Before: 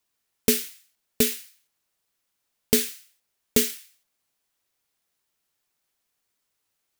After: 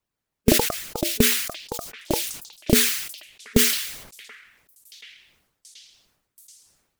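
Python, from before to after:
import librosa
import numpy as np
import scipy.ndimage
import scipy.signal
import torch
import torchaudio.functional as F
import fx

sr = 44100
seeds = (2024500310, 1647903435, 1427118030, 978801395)

y = fx.high_shelf(x, sr, hz=2300.0, db=-10.0)
y = fx.hpss(y, sr, part='harmonic', gain_db=-18)
y = fx.low_shelf(y, sr, hz=230.0, db=9.0)
y = fx.echo_stepped(y, sr, ms=730, hz=1600.0, octaves=0.7, feedback_pct=70, wet_db=-7.5)
y = fx.echo_pitch(y, sr, ms=177, semitones=6, count=3, db_per_echo=-6.0)
y = fx.sustainer(y, sr, db_per_s=66.0)
y = F.gain(torch.from_numpy(y), 4.0).numpy()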